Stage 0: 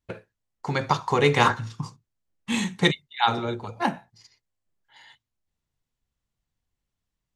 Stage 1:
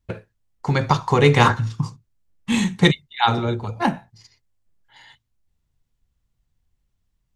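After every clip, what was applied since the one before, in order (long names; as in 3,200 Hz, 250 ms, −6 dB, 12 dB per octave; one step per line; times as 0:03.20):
low-shelf EQ 150 Hz +11.5 dB
level +3 dB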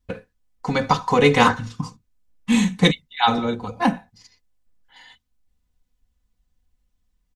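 comb filter 4 ms, depth 71%
level −1 dB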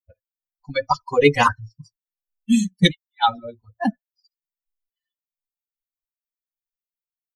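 spectral dynamics exaggerated over time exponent 3
level +4 dB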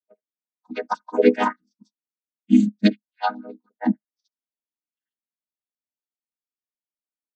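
channel vocoder with a chord as carrier minor triad, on G#3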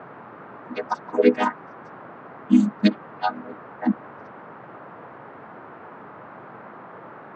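noise in a band 120–1,400 Hz −41 dBFS
level −1 dB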